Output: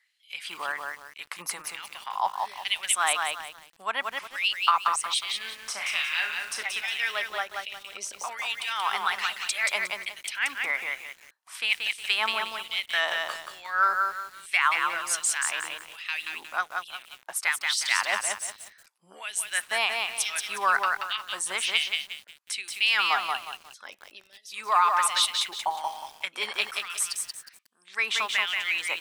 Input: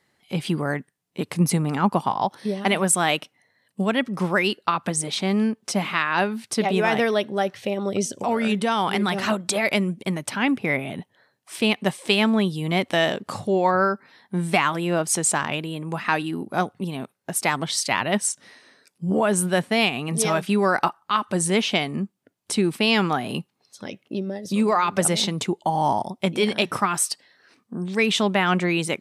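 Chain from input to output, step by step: LFO high-pass sine 1.2 Hz 990–3100 Hz; 5.21–6.63 s: flutter echo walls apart 5.9 m, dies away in 0.33 s; bit-crushed delay 180 ms, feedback 35%, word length 7-bit, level -3.5 dB; trim -5.5 dB

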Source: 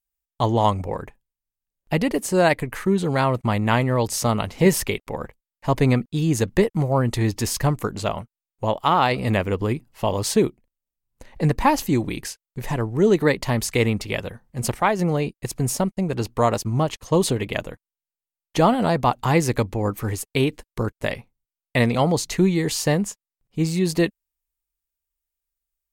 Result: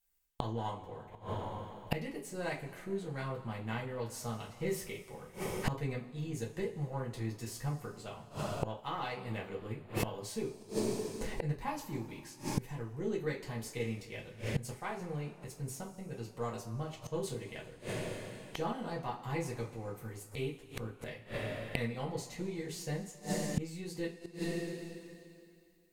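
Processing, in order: partial rectifier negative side -3 dB; two-slope reverb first 0.24 s, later 2.4 s, from -20 dB, DRR -4.5 dB; inverted gate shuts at -21 dBFS, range -25 dB; trim +2 dB

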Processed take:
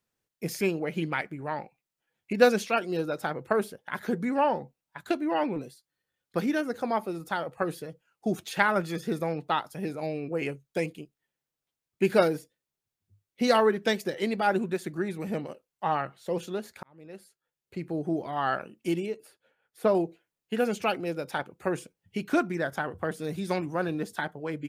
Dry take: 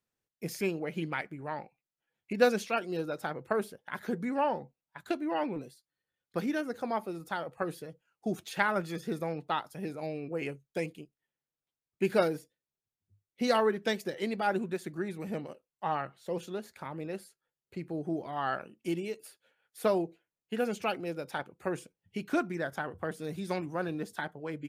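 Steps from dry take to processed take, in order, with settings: 16.83–17.88 s: fade in; 19.06–19.95 s: treble shelf 2.1 kHz -10.5 dB; trim +4.5 dB

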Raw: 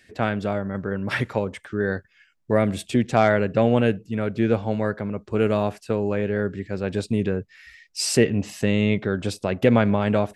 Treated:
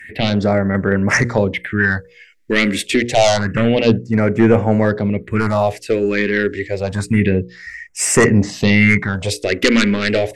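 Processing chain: peaking EQ 2 kHz +14 dB 0.58 oct; hum notches 60/120/180/240/300/360/420/480/540 Hz; in parallel at -3 dB: sine folder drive 12 dB, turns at 0 dBFS; on the sum: phase shifter stages 4, 0.28 Hz, lowest notch 120–4100 Hz; trim -4 dB

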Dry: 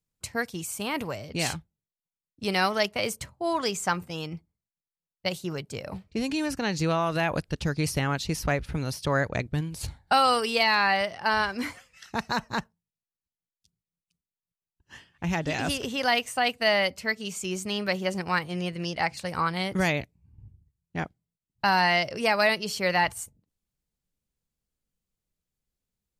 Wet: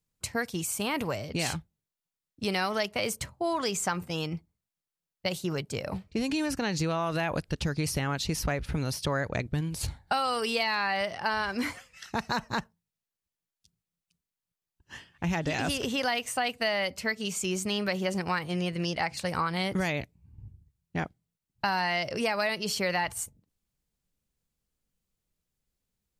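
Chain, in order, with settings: in parallel at -2 dB: peak limiter -23.5 dBFS, peak gain reduction 11.5 dB; on the sum: compression, threshold -22 dBFS, peak gain reduction 7 dB; trim -2.5 dB

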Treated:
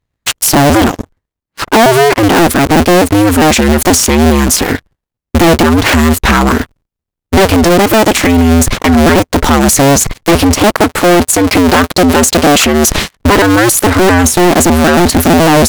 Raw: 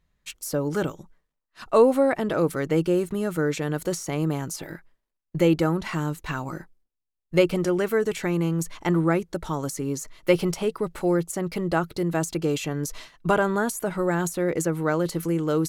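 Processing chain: cycle switcher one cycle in 2, inverted; 10.81–12.98 s: bass shelf 200 Hz -7.5 dB; gain riding within 4 dB 0.5 s; waveshaping leveller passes 5; loudness maximiser +8.5 dB; warped record 45 rpm, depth 100 cents; trim -2 dB

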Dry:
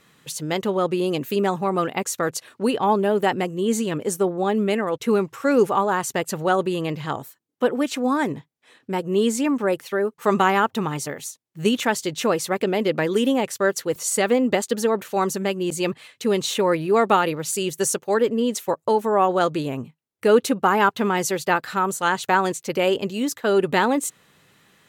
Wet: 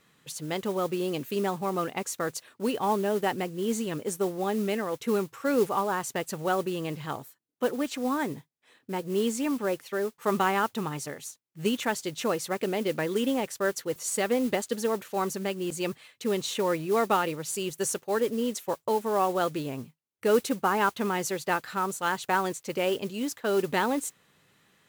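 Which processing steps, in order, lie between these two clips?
modulation noise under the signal 20 dB; trim -7 dB

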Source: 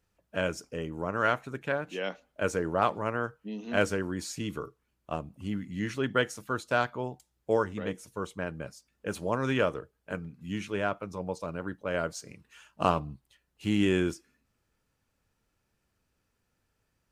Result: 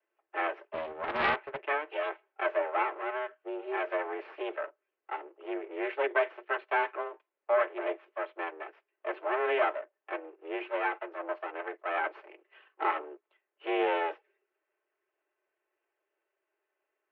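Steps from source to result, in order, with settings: comb filter that takes the minimum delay 4.3 ms; de-esser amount 90%; waveshaping leveller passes 1; 2.82–3.91 s: compression 2.5:1, threshold -30 dBFS, peak gain reduction 5.5 dB; mistuned SSB +150 Hz 210–2600 Hz; 0.70–1.66 s: loudspeaker Doppler distortion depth 0.28 ms

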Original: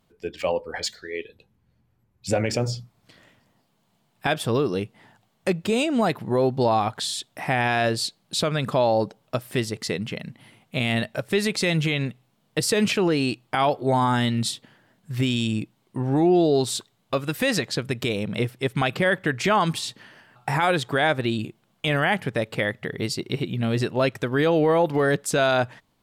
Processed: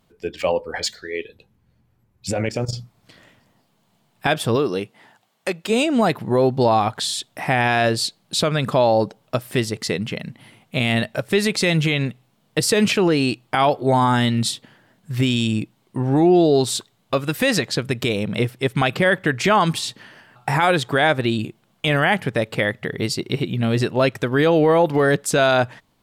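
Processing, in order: 2.30–2.73 s: level held to a coarse grid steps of 13 dB; 4.55–5.69 s: high-pass 200 Hz -> 810 Hz 6 dB/octave; trim +4 dB

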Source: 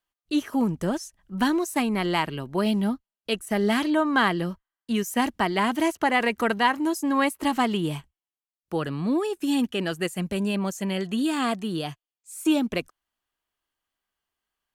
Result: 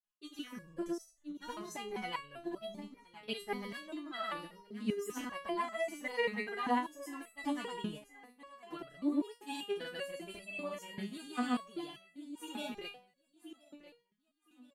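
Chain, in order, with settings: granulator, pitch spread up and down by 0 st; feedback delay 1022 ms, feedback 28%, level -16 dB; resonator arpeggio 5.1 Hz 210–660 Hz; trim +3 dB

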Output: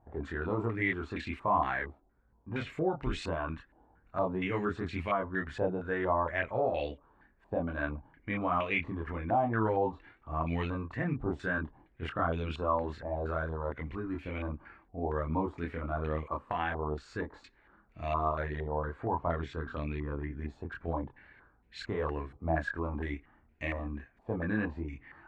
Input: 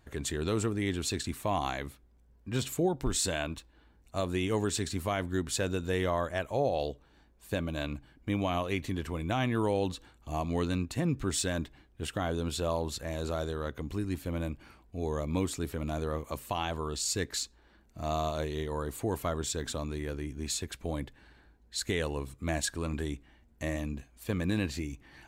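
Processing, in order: chorus voices 2, 0.62 Hz, delay 26 ms, depth 2.1 ms; 18.77–20.37 s: distance through air 79 m; step-sequenced low-pass 4.3 Hz 800–2400 Hz

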